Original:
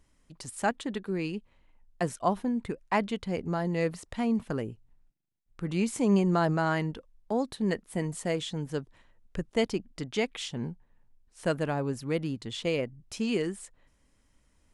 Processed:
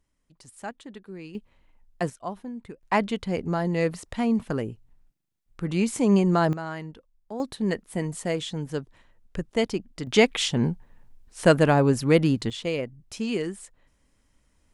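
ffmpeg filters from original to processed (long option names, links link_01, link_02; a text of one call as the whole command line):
ffmpeg -i in.wav -af "asetnsamples=nb_out_samples=441:pad=0,asendcmd='1.35 volume volume 2dB;2.1 volume volume -7dB;2.83 volume volume 4dB;6.53 volume volume -6.5dB;7.4 volume volume 2.5dB;10.07 volume volume 11dB;12.5 volume volume 1dB',volume=-8.5dB" out.wav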